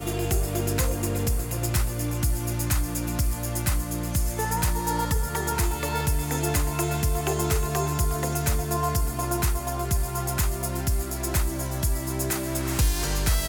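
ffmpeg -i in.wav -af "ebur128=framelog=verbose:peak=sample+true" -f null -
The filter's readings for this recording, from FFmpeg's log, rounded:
Integrated loudness:
  I:         -26.3 LUFS
  Threshold: -36.3 LUFS
Loudness range:
  LRA:         1.3 LU
  Threshold: -46.3 LUFS
  LRA low:   -27.0 LUFS
  LRA high:  -25.6 LUFS
Sample peak:
  Peak:      -12.2 dBFS
True peak:
  Peak:      -11.8 dBFS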